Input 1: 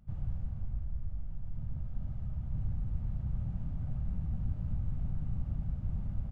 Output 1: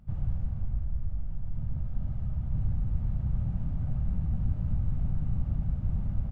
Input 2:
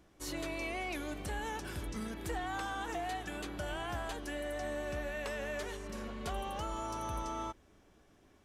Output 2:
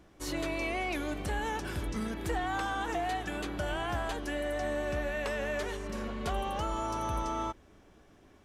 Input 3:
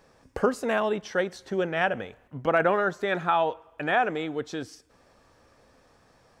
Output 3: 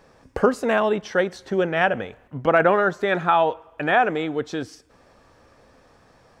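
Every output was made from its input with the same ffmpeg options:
-af "highshelf=f=4.7k:g=-5,volume=5.5dB"

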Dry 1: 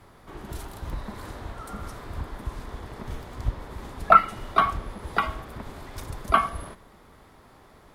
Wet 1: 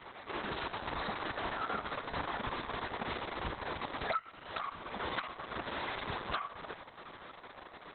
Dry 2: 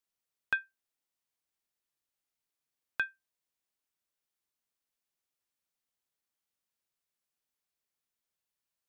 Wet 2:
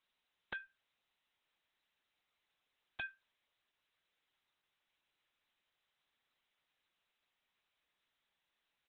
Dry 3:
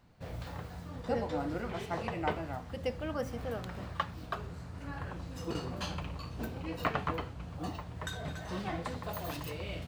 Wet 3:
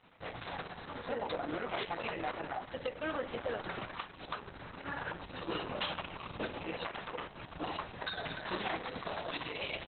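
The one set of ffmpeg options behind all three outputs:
-af "highpass=f=690:p=1,acompressor=threshold=-39dB:ratio=12,aresample=16000,aeval=exprs='0.0168*(abs(mod(val(0)/0.0168+3,4)-2)-1)':c=same,aresample=44100,volume=8.5dB" -ar 48000 -c:a libopus -b:a 6k

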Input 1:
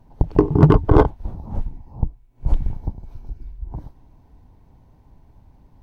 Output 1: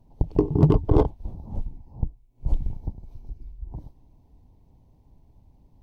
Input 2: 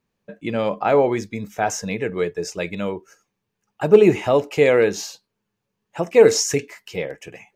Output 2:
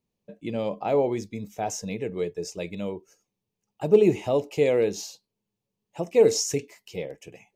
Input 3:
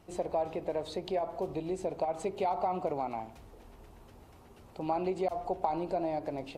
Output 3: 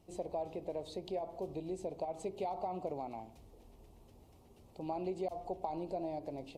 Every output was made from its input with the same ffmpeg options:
-af "equalizer=f=1.5k:t=o:w=0.97:g=-13.5,volume=-5dB"

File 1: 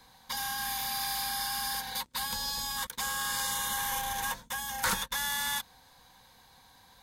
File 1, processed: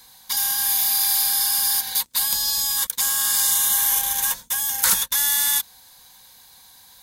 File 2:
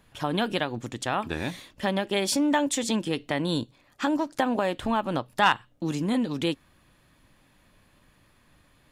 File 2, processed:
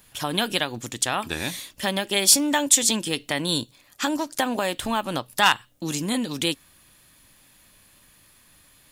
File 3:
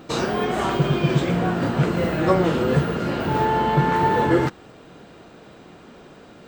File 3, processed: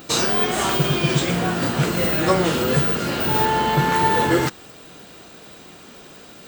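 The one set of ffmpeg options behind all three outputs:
-af "crystalizer=i=5:c=0,volume=-1dB"

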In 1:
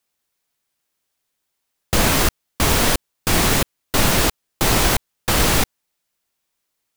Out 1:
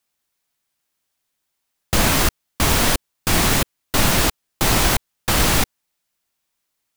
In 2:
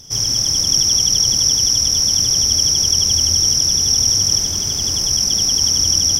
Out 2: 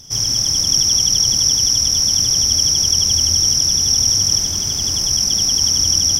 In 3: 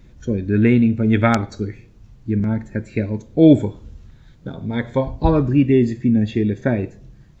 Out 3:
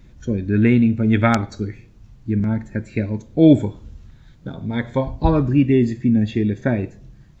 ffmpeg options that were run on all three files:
-af "equalizer=f=450:w=2.2:g=-3"

